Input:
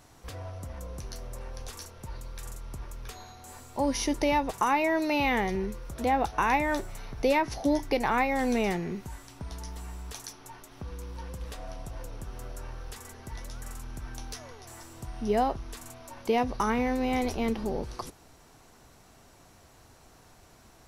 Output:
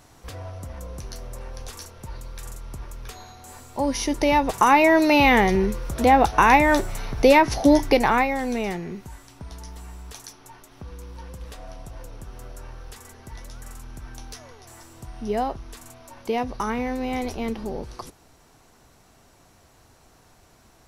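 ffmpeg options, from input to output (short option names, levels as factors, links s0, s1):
-af "volume=3.16,afade=t=in:st=4.09:d=0.72:silence=0.473151,afade=t=out:st=7.87:d=0.54:silence=0.334965"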